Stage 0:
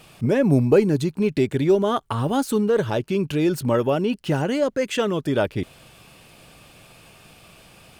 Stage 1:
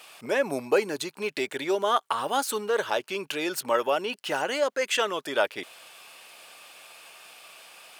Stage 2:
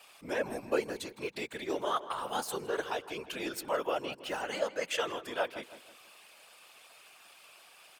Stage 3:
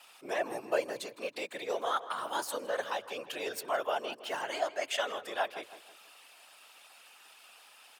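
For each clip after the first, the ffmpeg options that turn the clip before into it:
ffmpeg -i in.wav -af "highpass=740,volume=2.5dB" out.wav
ffmpeg -i in.wav -filter_complex "[0:a]afftfilt=real='hypot(re,im)*cos(2*PI*random(0))':imag='hypot(re,im)*sin(2*PI*random(1))':win_size=512:overlap=0.75,asplit=2[link_01][link_02];[link_02]adelay=161,lowpass=frequency=2500:poles=1,volume=-13dB,asplit=2[link_03][link_04];[link_04]adelay=161,lowpass=frequency=2500:poles=1,volume=0.4,asplit=2[link_05][link_06];[link_06]adelay=161,lowpass=frequency=2500:poles=1,volume=0.4,asplit=2[link_07][link_08];[link_08]adelay=161,lowpass=frequency=2500:poles=1,volume=0.4[link_09];[link_01][link_03][link_05][link_07][link_09]amix=inputs=5:normalize=0,volume=-2dB" out.wav
ffmpeg -i in.wav -af "afreqshift=100" out.wav

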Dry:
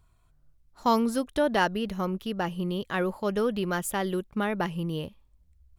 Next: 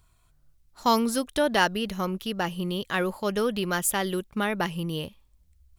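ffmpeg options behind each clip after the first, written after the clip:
ffmpeg -i in.wav -af "highshelf=frequency=2000:gain=8.5" out.wav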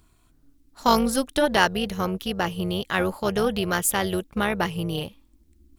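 ffmpeg -i in.wav -af "tremolo=f=280:d=0.621,volume=5.5dB" out.wav

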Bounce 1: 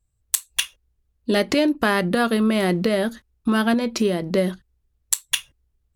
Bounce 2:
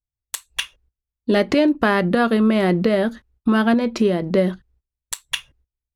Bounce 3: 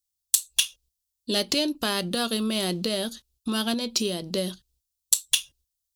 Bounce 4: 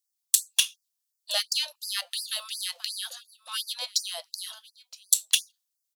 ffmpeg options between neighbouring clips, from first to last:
ffmpeg -i in.wav -af "lowpass=frequency=2300:poles=1,agate=range=-22dB:threshold=-58dB:ratio=16:detection=peak,volume=3dB" out.wav
ffmpeg -i in.wav -af "aexciter=amount=5.2:drive=9.9:freq=3000,volume=-11dB" out.wav
ffmpeg -i in.wav -af "aecho=1:1:969:0.0944,afftfilt=real='re*gte(b*sr/1024,510*pow(4600/510,0.5+0.5*sin(2*PI*2.8*pts/sr)))':imag='im*gte(b*sr/1024,510*pow(4600/510,0.5+0.5*sin(2*PI*2.8*pts/sr)))':win_size=1024:overlap=0.75" out.wav

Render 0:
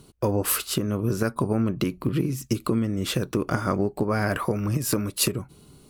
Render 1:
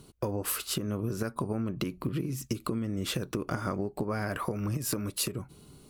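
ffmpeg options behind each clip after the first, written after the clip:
ffmpeg -i in.wav -af "acompressor=threshold=-26dB:ratio=6,volume=-2dB" out.wav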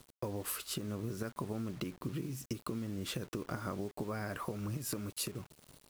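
ffmpeg -i in.wav -af "acrusher=bits=7:mix=0:aa=0.000001,volume=-7dB" out.wav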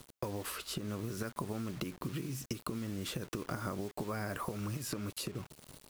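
ffmpeg -i in.wav -filter_complex "[0:a]acrossover=split=970|5900[link_01][link_02][link_03];[link_01]acompressor=threshold=-41dB:ratio=4[link_04];[link_02]acompressor=threshold=-47dB:ratio=4[link_05];[link_03]acompressor=threshold=-51dB:ratio=4[link_06];[link_04][link_05][link_06]amix=inputs=3:normalize=0,volume=5dB" out.wav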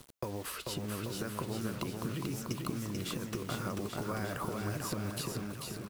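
ffmpeg -i in.wav -af "aecho=1:1:440|836|1192|1513|1802:0.631|0.398|0.251|0.158|0.1" out.wav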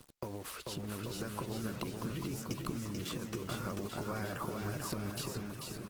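ffmpeg -i in.wav -af "volume=-2dB" -ar 48000 -c:a libopus -b:a 16k out.opus

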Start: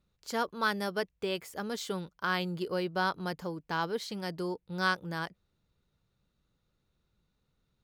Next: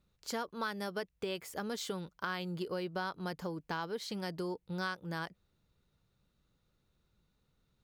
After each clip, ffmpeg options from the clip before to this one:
ffmpeg -i in.wav -af "acompressor=threshold=-36dB:ratio=4,volume=1dB" out.wav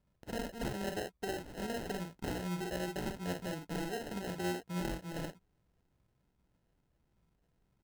ffmpeg -i in.wav -filter_complex "[0:a]asplit=2[link_01][link_02];[link_02]aecho=0:1:45|62:0.708|0.299[link_03];[link_01][link_03]amix=inputs=2:normalize=0,acrusher=samples=38:mix=1:aa=0.000001,volume=-2dB" out.wav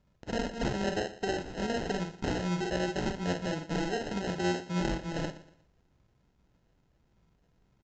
ffmpeg -i in.wav -af "aresample=16000,aresample=44100,aecho=1:1:119|238|357:0.158|0.0555|0.0194,volume=6.5dB" out.wav

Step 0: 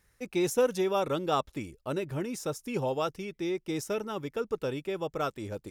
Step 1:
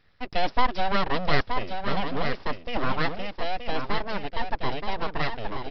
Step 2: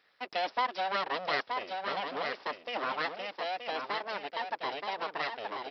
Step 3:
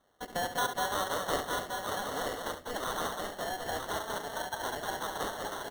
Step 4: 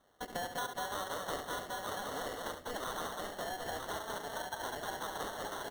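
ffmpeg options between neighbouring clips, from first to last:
ffmpeg -i in.wav -af "aresample=11025,aeval=exprs='abs(val(0))':channel_layout=same,aresample=44100,aecho=1:1:925:0.473,volume=7dB" out.wav
ffmpeg -i in.wav -filter_complex "[0:a]highpass=460,asplit=2[link_01][link_02];[link_02]acompressor=threshold=-35dB:ratio=6,volume=2dB[link_03];[link_01][link_03]amix=inputs=2:normalize=0,volume=-7.5dB" out.wav
ffmpeg -i in.wav -filter_complex "[0:a]asplit=2[link_01][link_02];[link_02]aecho=0:1:19|71:0.211|0.335[link_03];[link_01][link_03]amix=inputs=2:normalize=0,acrusher=samples=18:mix=1:aa=0.000001,asplit=2[link_04][link_05];[link_05]aecho=0:1:197:0.562[link_06];[link_04][link_06]amix=inputs=2:normalize=0,volume=-2dB" out.wav
ffmpeg -i in.wav -af "acompressor=threshold=-40dB:ratio=2.5,volume=1dB" out.wav

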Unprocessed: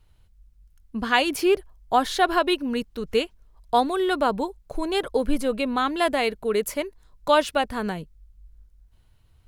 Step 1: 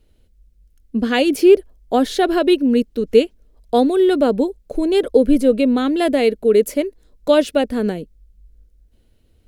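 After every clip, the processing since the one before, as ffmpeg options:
ffmpeg -i in.wav -af "equalizer=frequency=125:width_type=o:width=1:gain=-7,equalizer=frequency=250:width_type=o:width=1:gain=10,equalizer=frequency=500:width_type=o:width=1:gain=9,equalizer=frequency=1000:width_type=o:width=1:gain=-11,volume=2dB" out.wav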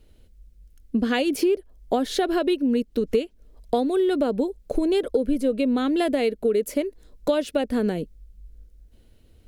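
ffmpeg -i in.wav -af "acompressor=threshold=-22dB:ratio=6,volume=2.5dB" out.wav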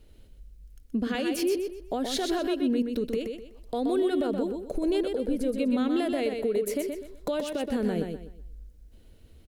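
ffmpeg -i in.wav -filter_complex "[0:a]alimiter=limit=-20.5dB:level=0:latency=1:release=166,asplit=2[link_01][link_02];[link_02]aecho=0:1:125|250|375|500:0.531|0.159|0.0478|0.0143[link_03];[link_01][link_03]amix=inputs=2:normalize=0" out.wav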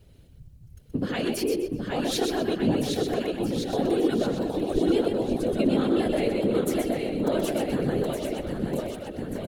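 ffmpeg -i in.wav -af "aecho=1:1:770|1463|2087|2648|3153:0.631|0.398|0.251|0.158|0.1,afftfilt=real='hypot(re,im)*cos(2*PI*random(0))':imag='hypot(re,im)*sin(2*PI*random(1))':win_size=512:overlap=0.75,volume=7dB" out.wav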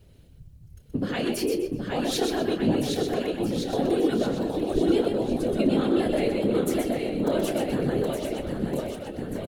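ffmpeg -i in.wav -filter_complex "[0:a]asplit=2[link_01][link_02];[link_02]adelay=29,volume=-11.5dB[link_03];[link_01][link_03]amix=inputs=2:normalize=0" out.wav

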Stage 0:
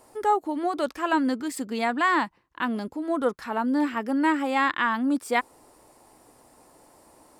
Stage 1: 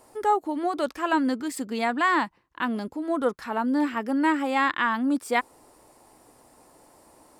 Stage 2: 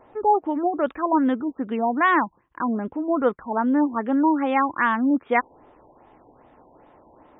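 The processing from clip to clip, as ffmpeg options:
ffmpeg -i in.wav -af anull out.wav
ffmpeg -i in.wav -af "highshelf=frequency=5800:gain=-10,afftfilt=real='re*lt(b*sr/1024,990*pow(3800/990,0.5+0.5*sin(2*PI*2.5*pts/sr)))':imag='im*lt(b*sr/1024,990*pow(3800/990,0.5+0.5*sin(2*PI*2.5*pts/sr)))':win_size=1024:overlap=0.75,volume=4dB" out.wav

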